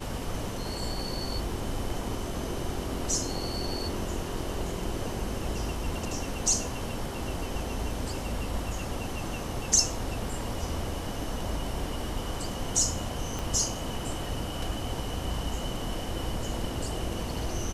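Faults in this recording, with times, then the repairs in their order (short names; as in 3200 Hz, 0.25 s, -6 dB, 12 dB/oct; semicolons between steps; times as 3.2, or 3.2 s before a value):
13.39 pop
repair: de-click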